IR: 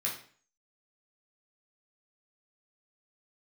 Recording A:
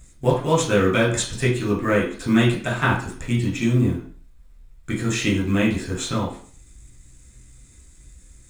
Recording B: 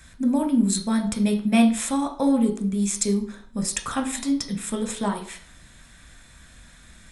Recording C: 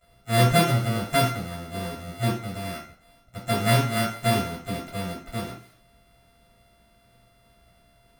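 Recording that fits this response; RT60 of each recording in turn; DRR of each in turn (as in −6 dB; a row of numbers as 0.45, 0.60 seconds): A; 0.45, 0.45, 0.45 seconds; −4.0, 4.0, −14.0 decibels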